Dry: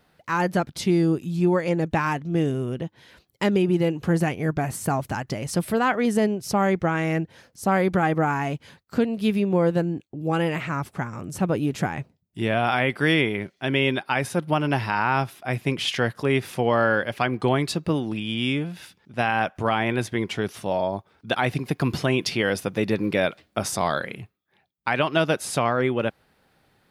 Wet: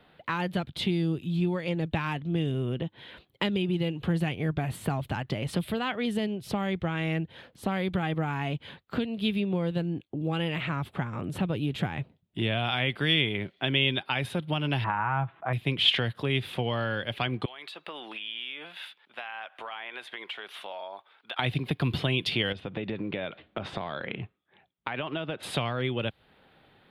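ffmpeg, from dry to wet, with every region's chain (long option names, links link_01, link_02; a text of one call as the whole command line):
ffmpeg -i in.wav -filter_complex "[0:a]asettb=1/sr,asplit=3[link_01][link_02][link_03];[link_01]atrim=end=14.844[link_04];[link_02]atrim=start=14.84:end=15.53,asetpts=PTS-STARTPTS,afade=type=in:duration=0.004:curve=qsin,afade=type=out:start_time=0.686:duration=0.004:curve=qsin,lowpass=frequency=1800:width=0.5412,lowpass=frequency=1800:width=1.3066,equalizer=frequency=1000:width=1:gain=12.5,aecho=1:1:6.1:0.34,atrim=end_sample=30429[link_05];[link_03]atrim=start=15.526[link_06];[link_04][link_05]acrossfade=duration=0.004:curve1=hsin:curve2=qsin[link_07];[link_07][link_06]acrossfade=duration=0.004:curve1=qsin:curve2=hsin,asettb=1/sr,asplit=3[link_08][link_09][link_10];[link_08]atrim=end=17.454[link_11];[link_09]atrim=start=17.45:end=21.39,asetpts=PTS-STARTPTS,afade=type=in:duration=0.004:curve=qsin,afade=type=out:start_time=3.936:duration=0.004:curve=qsin,highpass=950,acompressor=threshold=-39dB:ratio=6:attack=3.2:release=140:knee=1:detection=peak[link_12];[link_10]atrim=start=21.386[link_13];[link_11][link_12]acrossfade=duration=0.004:curve1=hsin:curve2=qsin[link_14];[link_14][link_13]acrossfade=duration=0.004:curve1=qsin:curve2=hsin,asettb=1/sr,asplit=3[link_15][link_16][link_17];[link_15]atrim=end=22.524[link_18];[link_16]atrim=start=22.52:end=25.43,asetpts=PTS-STARTPTS,afade=type=in:duration=0.004:curve=qsin,afade=type=out:start_time=2.906:duration=0.004:curve=qsin,lowpass=3200,acompressor=threshold=-29dB:ratio=4:attack=3.2:release=140:knee=1:detection=peak[link_19];[link_17]atrim=start=25.426[link_20];[link_18][link_19]acrossfade=duration=0.004:curve1=hsin:curve2=qsin[link_21];[link_21][link_20]acrossfade=duration=0.004:curve1=qsin:curve2=hsin,equalizer=frequency=480:width=0.37:gain=4,acrossover=split=140|3000[link_22][link_23][link_24];[link_23]acompressor=threshold=-31dB:ratio=5[link_25];[link_22][link_25][link_24]amix=inputs=3:normalize=0,highshelf=frequency=4500:width_type=q:width=3:gain=-9.5" out.wav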